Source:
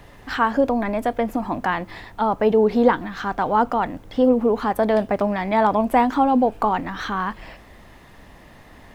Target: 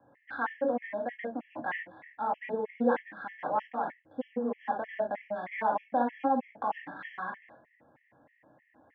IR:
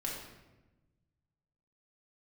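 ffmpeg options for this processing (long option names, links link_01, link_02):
-filter_complex "[0:a]lowshelf=frequency=220:gain=-10.5,acrossover=split=490[link_01][link_02];[link_02]adynamicsmooth=sensitivity=5.5:basefreq=1100[link_03];[link_01][link_03]amix=inputs=2:normalize=0,highpass=frequency=100:width=0.5412,highpass=frequency=100:width=1.3066,equalizer=frequency=190:width_type=q:width=4:gain=-9,equalizer=frequency=400:width_type=q:width=4:gain=-7,equalizer=frequency=1200:width_type=q:width=4:gain=-7,equalizer=frequency=2000:width_type=q:width=4:gain=4,lowpass=frequency=2500:width=0.5412,lowpass=frequency=2500:width=1.3066[link_04];[1:a]atrim=start_sample=2205,atrim=end_sample=3528[link_05];[link_04][link_05]afir=irnorm=-1:irlink=0,afftfilt=real='re*gt(sin(2*PI*3.2*pts/sr)*(1-2*mod(floor(b*sr/1024/1700),2)),0)':imag='im*gt(sin(2*PI*3.2*pts/sr)*(1-2*mod(floor(b*sr/1024/1700),2)),0)':win_size=1024:overlap=0.75,volume=-7.5dB"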